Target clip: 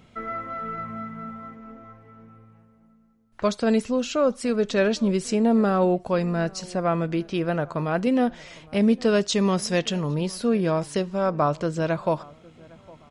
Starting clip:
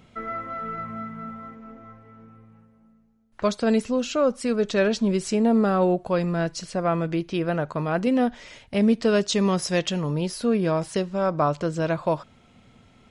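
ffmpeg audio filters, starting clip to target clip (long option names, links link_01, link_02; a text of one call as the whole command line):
ffmpeg -i in.wav -filter_complex "[0:a]asettb=1/sr,asplit=3[link_01][link_02][link_03];[link_01]atrim=end=6.204[link_04];[link_02]atrim=start=6.2:end=6.6,asetpts=PTS-STARTPTS,afade=type=in:duration=0.004:curve=qsin,afade=type=out:start_time=0.396:duration=0.004:curve=qsin,bandreject=frequency=3300:width=9.9[link_05];[link_03]atrim=start=6.596[link_06];[link_04][link_05]acrossfade=duration=0.004:curve1=hsin:curve2=qsin[link_07];[link_07][link_06]acrossfade=duration=0.004:curve1=qsin:curve2=hsin,asplit=2[link_08][link_09];[link_09]adelay=808,lowpass=frequency=1900:poles=1,volume=-23.5dB,asplit=2[link_10][link_11];[link_11]adelay=808,lowpass=frequency=1900:poles=1,volume=0.37[link_12];[link_08][link_10][link_12]amix=inputs=3:normalize=0" out.wav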